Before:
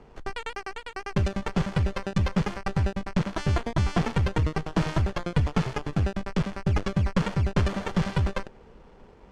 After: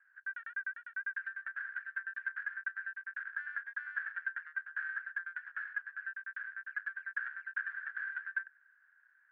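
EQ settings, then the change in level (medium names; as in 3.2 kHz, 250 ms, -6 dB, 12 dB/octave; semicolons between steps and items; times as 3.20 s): Butterworth band-pass 1.6 kHz, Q 7.7; distance through air 110 m; tilt EQ +4.5 dB/octave; +4.5 dB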